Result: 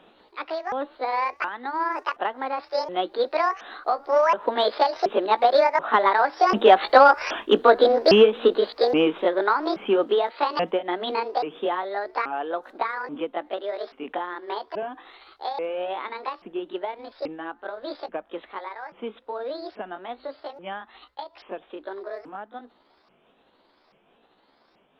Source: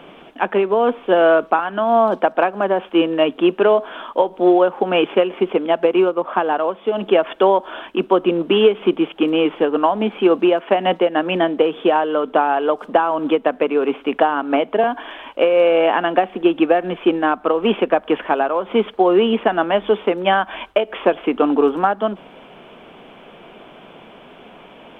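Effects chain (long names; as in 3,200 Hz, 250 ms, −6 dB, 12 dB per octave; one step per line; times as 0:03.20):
pitch shifter swept by a sawtooth +9.5 semitones, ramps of 777 ms
source passing by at 0:06.98, 25 m/s, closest 28 metres
in parallel at −6 dB: soft clipping −12 dBFS, distortion −15 dB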